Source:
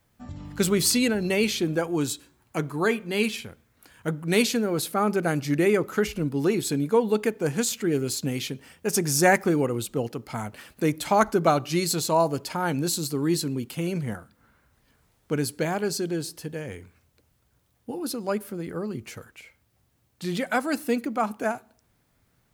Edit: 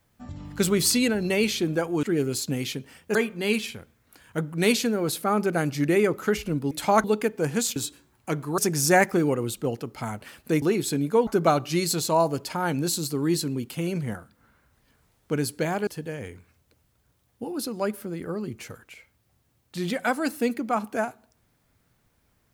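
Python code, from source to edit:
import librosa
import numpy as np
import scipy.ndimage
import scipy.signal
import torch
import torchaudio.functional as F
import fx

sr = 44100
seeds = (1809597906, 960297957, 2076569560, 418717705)

y = fx.edit(x, sr, fx.swap(start_s=2.03, length_s=0.82, other_s=7.78, other_length_s=1.12),
    fx.swap(start_s=6.41, length_s=0.65, other_s=10.94, other_length_s=0.33),
    fx.cut(start_s=15.87, length_s=0.47), tone=tone)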